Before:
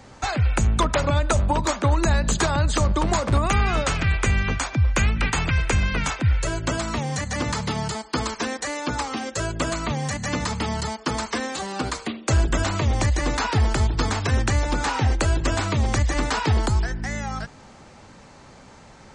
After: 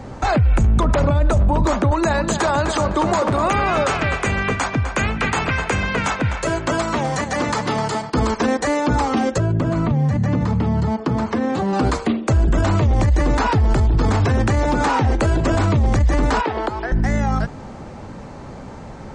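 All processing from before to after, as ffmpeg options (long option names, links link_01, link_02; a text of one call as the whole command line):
ffmpeg -i in.wav -filter_complex "[0:a]asettb=1/sr,asplit=3[link_01][link_02][link_03];[link_01]atrim=end=1.914[link_04];[link_02]atrim=start=1.91:end=8.1,asetpts=PTS-STARTPTS,afade=type=in:duration=0.004:curve=qsin,afade=type=out:start_time=6.186:duration=0.004:curve=qsin,highpass=frequency=600:poles=1,asplit=2[link_05][link_06];[link_06]adelay=254,lowpass=frequency=4000:poles=1,volume=-9dB,asplit=2[link_07][link_08];[link_08]adelay=254,lowpass=frequency=4000:poles=1,volume=0.36,asplit=2[link_09][link_10];[link_10]adelay=254,lowpass=frequency=4000:poles=1,volume=0.36,asplit=2[link_11][link_12];[link_12]adelay=254,lowpass=frequency=4000:poles=1,volume=0.36[link_13];[link_05][link_07][link_09][link_11][link_13]amix=inputs=5:normalize=0,atrim=end_sample=272979[link_14];[link_03]atrim=start=8.096[link_15];[link_04][link_14]acrossfade=duration=0.004:curve1=hsin:curve2=qsin[link_16];[link_16][link_15]acrossfade=duration=0.004:curve1=qsin:curve2=hsin,asettb=1/sr,asplit=3[link_17][link_18][link_19];[link_17]atrim=end=9.384[link_20];[link_18]atrim=start=9.38:end=11.73,asetpts=PTS-STARTPTS,afade=type=in:duration=0.004:curve=qsin,afade=type=out:start_time=2.346:duration=0.004:curve=qsin,highpass=frequency=98:width=0.5412,highpass=frequency=98:width=1.3066,aemphasis=mode=reproduction:type=bsi,acompressor=threshold=-28dB:ratio=8:attack=3.2:release=140:knee=1:detection=peak[link_21];[link_19]atrim=start=11.726[link_22];[link_20][link_21]acrossfade=duration=0.004:curve1=hsin:curve2=qsin[link_23];[link_23][link_22]acrossfade=duration=0.004:curve1=qsin:curve2=hsin,asettb=1/sr,asplit=3[link_24][link_25][link_26];[link_24]atrim=end=14.254[link_27];[link_25]atrim=start=14.25:end=15.55,asetpts=PTS-STARTPTS,afade=type=in:duration=0.004:curve=qsin,afade=type=out:start_time=1.296:duration=0.004:curve=qsin,highpass=frequency=150:poles=1,bandreject=frequency=330.8:width_type=h:width=4,bandreject=frequency=661.6:width_type=h:width=4,bandreject=frequency=992.4:width_type=h:width=4,bandreject=frequency=1323.2:width_type=h:width=4,bandreject=frequency=1654:width_type=h:width=4,bandreject=frequency=1984.8:width_type=h:width=4,bandreject=frequency=2315.6:width_type=h:width=4,bandreject=frequency=2646.4:width_type=h:width=4,bandreject=frequency=2977.2:width_type=h:width=4,bandreject=frequency=3308:width_type=h:width=4,bandreject=frequency=3638.8:width_type=h:width=4,bandreject=frequency=3969.6:width_type=h:width=4,bandreject=frequency=4300.4:width_type=h:width=4,bandreject=frequency=4631.2:width_type=h:width=4,bandreject=frequency=4962:width_type=h:width=4,bandreject=frequency=5292.8:width_type=h:width=4,bandreject=frequency=5623.6:width_type=h:width=4,bandreject=frequency=5954.4:width_type=h:width=4,bandreject=frequency=6285.2:width_type=h:width=4,bandreject=frequency=6616:width_type=h:width=4,bandreject=frequency=6946.8:width_type=h:width=4,bandreject=frequency=7277.6:width_type=h:width=4,bandreject=frequency=7608.4:width_type=h:width=4,bandreject=frequency=7939.2:width_type=h:width=4,bandreject=frequency=8270:width_type=h:width=4,bandreject=frequency=8600.8:width_type=h:width=4,bandreject=frequency=8931.6:width_type=h:width=4,bandreject=frequency=9262.4:width_type=h:width=4[link_28];[link_26]atrim=start=15.546[link_29];[link_27][link_28]acrossfade=duration=0.004:curve1=hsin:curve2=qsin[link_30];[link_30][link_29]acrossfade=duration=0.004:curve1=qsin:curve2=hsin,asettb=1/sr,asplit=3[link_31][link_32][link_33];[link_31]atrim=end=16.414[link_34];[link_32]atrim=start=16.41:end=16.92,asetpts=PTS-STARTPTS,afade=type=in:duration=0.004:curve=qsin,afade=type=out:start_time=0.506:duration=0.004:curve=qsin,acrossover=split=310 4100:gain=0.0708 1 0.112[link_35][link_36][link_37];[link_35][link_36][link_37]amix=inputs=3:normalize=0,acrossover=split=510|1400[link_38][link_39][link_40];[link_38]acompressor=threshold=-37dB:ratio=4[link_41];[link_39]acompressor=threshold=-35dB:ratio=4[link_42];[link_40]acompressor=threshold=-36dB:ratio=4[link_43];[link_41][link_42][link_43]amix=inputs=3:normalize=0[link_44];[link_33]atrim=start=16.916[link_45];[link_34][link_44]acrossfade=duration=0.004:curve1=hsin:curve2=qsin[link_46];[link_46][link_45]acrossfade=duration=0.004:curve1=qsin:curve2=hsin,tiltshelf=frequency=1400:gain=7,alimiter=limit=-17dB:level=0:latency=1:release=14,volume=7dB" out.wav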